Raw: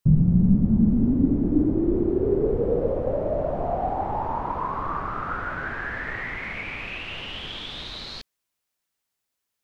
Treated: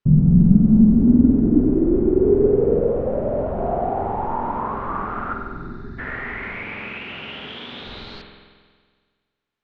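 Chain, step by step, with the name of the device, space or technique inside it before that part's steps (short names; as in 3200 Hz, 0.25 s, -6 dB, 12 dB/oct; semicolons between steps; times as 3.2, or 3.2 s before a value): 6.63–7.85 HPF 120 Hz 12 dB/oct; inside a cardboard box (LPF 3300 Hz 12 dB/oct; small resonant body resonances 230/400/1400 Hz, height 6 dB); 5.33–5.99 spectral gain 430–3500 Hz -26 dB; spring tank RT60 1.7 s, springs 46 ms, chirp 40 ms, DRR 2 dB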